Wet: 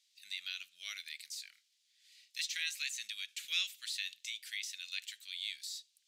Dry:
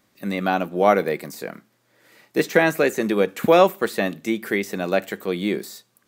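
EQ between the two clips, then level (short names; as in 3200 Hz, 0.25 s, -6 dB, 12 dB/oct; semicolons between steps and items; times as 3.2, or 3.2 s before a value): inverse Chebyshev high-pass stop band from 950 Hz, stop band 60 dB; air absorption 66 m; +1.5 dB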